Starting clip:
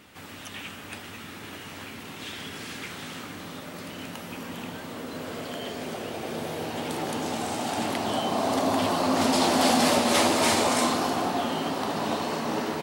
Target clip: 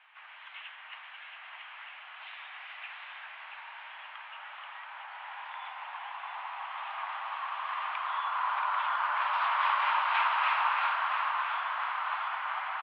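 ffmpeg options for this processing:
ffmpeg -i in.wav -af "aecho=1:1:679|1358|2037|2716|3395:0.473|0.218|0.1|0.0461|0.0212,highpass=frequency=520:width_type=q:width=0.5412,highpass=frequency=520:width_type=q:width=1.307,lowpass=frequency=2600:width_type=q:width=0.5176,lowpass=frequency=2600:width_type=q:width=0.7071,lowpass=frequency=2600:width_type=q:width=1.932,afreqshift=340,volume=-3.5dB" out.wav

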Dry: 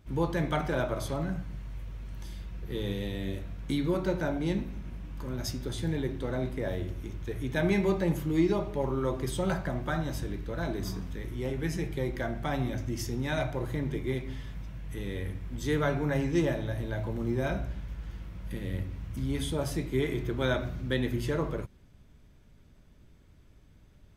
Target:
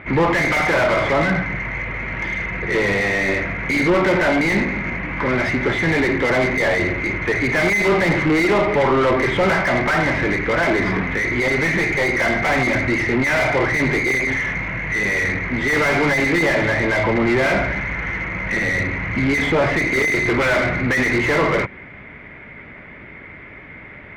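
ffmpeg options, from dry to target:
ffmpeg -i in.wav -filter_complex "[0:a]lowpass=frequency=2100:width_type=q:width=11,asplit=2[link_01][link_02];[link_02]highpass=frequency=720:poles=1,volume=36dB,asoftclip=type=tanh:threshold=-6.5dB[link_03];[link_01][link_03]amix=inputs=2:normalize=0,lowpass=frequency=1100:poles=1,volume=-6dB" out.wav

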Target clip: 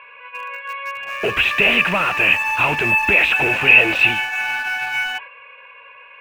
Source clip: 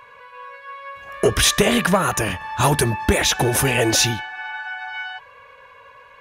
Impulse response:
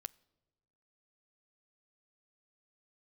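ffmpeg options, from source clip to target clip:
-filter_complex "[0:a]agate=range=-6dB:threshold=-42dB:ratio=16:detection=peak,asplit=2[link_01][link_02];[link_02]highpass=frequency=720:poles=1,volume=23dB,asoftclip=type=tanh:threshold=-5.5dB[link_03];[link_01][link_03]amix=inputs=2:normalize=0,lowpass=frequency=1400:poles=1,volume=-6dB,lowpass=frequency=2600:width_type=q:width=15,asplit=2[link_04][link_05];[link_05]aeval=exprs='val(0)*gte(abs(val(0)),0.237)':channel_layout=same,volume=-12dB[link_06];[link_04][link_06]amix=inputs=2:normalize=0,volume=-9.5dB"

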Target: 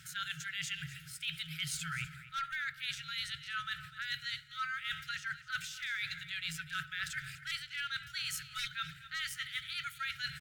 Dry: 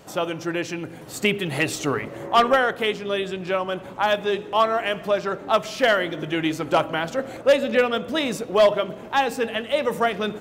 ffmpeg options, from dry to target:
ffmpeg -i in.wav -af "afftfilt=real='re*(1-between(b*sr/4096,150,1100))':imag='im*(1-between(b*sr/4096,150,1100))':win_size=4096:overlap=0.75,adynamicequalizer=threshold=0.00708:dfrequency=610:dqfactor=1.1:tfrequency=610:tqfactor=1.1:attack=5:release=100:ratio=0.375:range=2.5:mode=cutabove:tftype=bell,areverse,acompressor=threshold=-35dB:ratio=16,areverse,asetrate=50951,aresample=44100,atempo=0.865537,aecho=1:1:249:0.168" out.wav

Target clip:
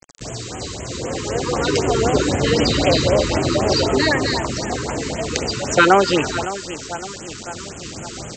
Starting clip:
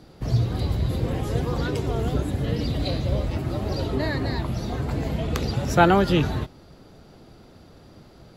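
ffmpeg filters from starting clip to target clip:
ffmpeg -i in.wav -filter_complex "[0:a]acrossover=split=320[link_01][link_02];[link_01]acompressor=threshold=-36dB:ratio=6[link_03];[link_03][link_02]amix=inputs=2:normalize=0,highpass=frequency=65:poles=1,highshelf=frequency=4000:gain=-6,bandreject=frequency=3400:width=9.1,aecho=1:1:561|1122|1683|2244:0.2|0.0918|0.0422|0.0194,dynaudnorm=framelen=200:gausssize=17:maxgain=13.5dB,aresample=16000,acrusher=bits=6:mix=0:aa=0.000001,aresample=44100,aemphasis=mode=production:type=75fm,afftfilt=real='re*(1-between(b*sr/1024,630*pow(4800/630,0.5+0.5*sin(2*PI*3.9*pts/sr))/1.41,630*pow(4800/630,0.5+0.5*sin(2*PI*3.9*pts/sr))*1.41))':imag='im*(1-between(b*sr/1024,630*pow(4800/630,0.5+0.5*sin(2*PI*3.9*pts/sr))/1.41,630*pow(4800/630,0.5+0.5*sin(2*PI*3.9*pts/sr))*1.41))':win_size=1024:overlap=0.75,volume=4dB" out.wav

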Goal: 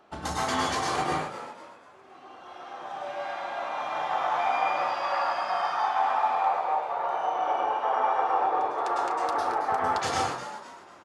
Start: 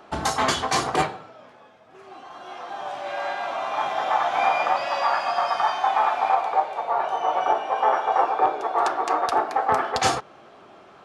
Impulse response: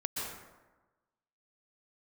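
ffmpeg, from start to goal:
-filter_complex "[0:a]asplit=5[link_01][link_02][link_03][link_04][link_05];[link_02]adelay=247,afreqshift=87,volume=-12dB[link_06];[link_03]adelay=494,afreqshift=174,volume=-20.2dB[link_07];[link_04]adelay=741,afreqshift=261,volume=-28.4dB[link_08];[link_05]adelay=988,afreqshift=348,volume=-36.5dB[link_09];[link_01][link_06][link_07][link_08][link_09]amix=inputs=5:normalize=0[link_10];[1:a]atrim=start_sample=2205,afade=type=out:start_time=0.37:duration=0.01,atrim=end_sample=16758,asetrate=52920,aresample=44100[link_11];[link_10][link_11]afir=irnorm=-1:irlink=0,volume=-7dB"

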